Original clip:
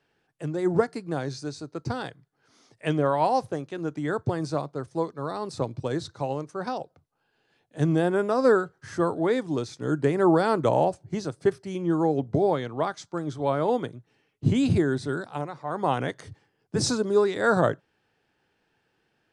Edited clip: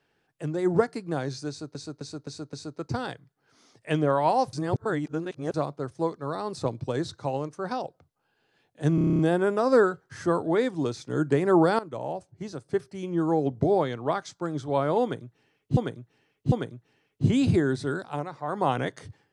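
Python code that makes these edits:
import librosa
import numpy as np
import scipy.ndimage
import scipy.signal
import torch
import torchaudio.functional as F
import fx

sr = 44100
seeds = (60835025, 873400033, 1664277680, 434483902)

y = fx.edit(x, sr, fx.repeat(start_s=1.49, length_s=0.26, count=5),
    fx.reverse_span(start_s=3.49, length_s=1.01),
    fx.stutter(start_s=7.91, slice_s=0.03, count=9),
    fx.fade_in_from(start_s=10.51, length_s=1.74, floor_db=-16.5),
    fx.repeat(start_s=13.74, length_s=0.75, count=3), tone=tone)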